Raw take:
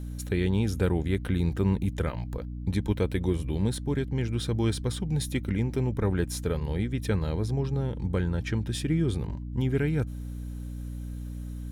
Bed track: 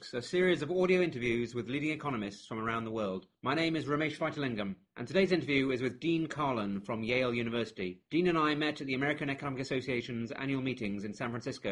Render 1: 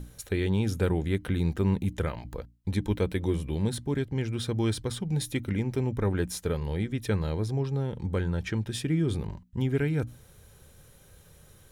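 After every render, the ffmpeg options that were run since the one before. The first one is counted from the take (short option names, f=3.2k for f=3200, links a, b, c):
-af "bandreject=f=60:t=h:w=6,bandreject=f=120:t=h:w=6,bandreject=f=180:t=h:w=6,bandreject=f=240:t=h:w=6,bandreject=f=300:t=h:w=6"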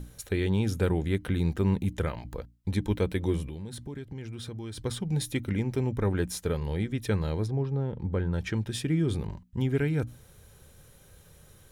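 -filter_complex "[0:a]asettb=1/sr,asplit=3[a][b][c];[a]atrim=end=3.474[d];[b]atrim=start=3.47:end=4.78,asetpts=PTS-STARTPTS,afade=t=in:d=0.004:c=qsin,afade=t=out:st=1.306:d=0.004:c=qsin,acompressor=threshold=-36dB:ratio=4:attack=3.2:release=140:knee=1:detection=peak[e];[c]atrim=start=4.776[f];[d][e]acrossfade=d=0.004:c1=hsin:c2=qsin[g];[g][f]acrossfade=d=0.004:c1=qsin:c2=hsin,asplit=3[h][i][j];[h]afade=t=out:st=7.46:d=0.02[k];[i]lowpass=f=1.4k:p=1,afade=t=in:st=7.46:d=0.02,afade=t=out:st=8.32:d=0.02[l];[j]afade=t=in:st=8.32:d=0.02[m];[k][l][m]amix=inputs=3:normalize=0"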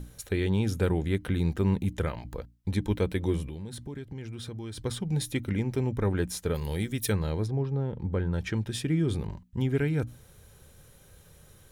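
-filter_complex "[0:a]asplit=3[a][b][c];[a]afade=t=out:st=6.54:d=0.02[d];[b]aemphasis=mode=production:type=75fm,afade=t=in:st=6.54:d=0.02,afade=t=out:st=7.11:d=0.02[e];[c]afade=t=in:st=7.11:d=0.02[f];[d][e][f]amix=inputs=3:normalize=0"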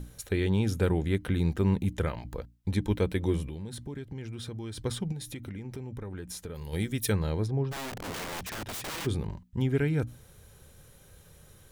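-filter_complex "[0:a]asplit=3[a][b][c];[a]afade=t=out:st=5.11:d=0.02[d];[b]acompressor=threshold=-35dB:ratio=8:attack=3.2:release=140:knee=1:detection=peak,afade=t=in:st=5.11:d=0.02,afade=t=out:st=6.72:d=0.02[e];[c]afade=t=in:st=6.72:d=0.02[f];[d][e][f]amix=inputs=3:normalize=0,asplit=3[g][h][i];[g]afade=t=out:st=7.71:d=0.02[j];[h]aeval=exprs='(mod(39.8*val(0)+1,2)-1)/39.8':c=same,afade=t=in:st=7.71:d=0.02,afade=t=out:st=9.05:d=0.02[k];[i]afade=t=in:st=9.05:d=0.02[l];[j][k][l]amix=inputs=3:normalize=0"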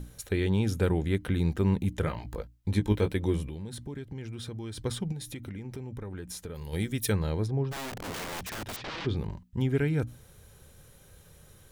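-filter_complex "[0:a]asettb=1/sr,asplit=3[a][b][c];[a]atrim=end=2.014[d];[b]atrim=start=2.01:end=3.13,asetpts=PTS-STARTPTS,afade=t=in:d=0.004:c=qsin,afade=t=out:st=1.116:d=0.004:c=qsin,asplit=2[e][f];[f]adelay=19,volume=-7dB[g];[e][g]amix=inputs=2:normalize=0,atrim=end_sample=49392[h];[c]atrim=start=3.126[i];[d][h]acrossfade=d=0.004:c1=hsin:c2=qsin[j];[j][i]acrossfade=d=0.004:c1=qsin:c2=hsin,asettb=1/sr,asplit=3[k][l][m];[k]atrim=end=8.764[n];[l]atrim=start=8.76:end=9.17,asetpts=PTS-STARTPTS,afade=t=in:d=0.004:c=qsin,afade=t=out:st=0.406:d=0.004:c=qsin,lowpass=f=4.8k:w=0.5412,lowpass=f=4.8k:w=1.3066[o];[m]atrim=start=9.166[p];[n][o]acrossfade=d=0.004:c1=hsin:c2=qsin[q];[q][p]acrossfade=d=0.004:c1=qsin:c2=hsin"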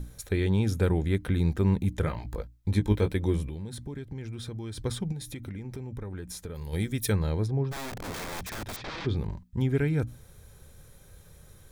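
-af "lowshelf=f=72:g=6.5,bandreject=f=2.9k:w=11"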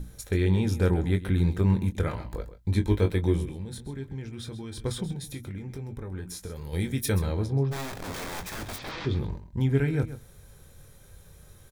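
-filter_complex "[0:a]asplit=2[a][b];[b]adelay=22,volume=-8dB[c];[a][c]amix=inputs=2:normalize=0,aecho=1:1:131:0.211"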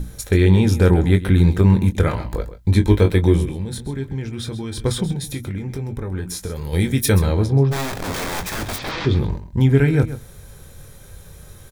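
-af "volume=10dB,alimiter=limit=-3dB:level=0:latency=1"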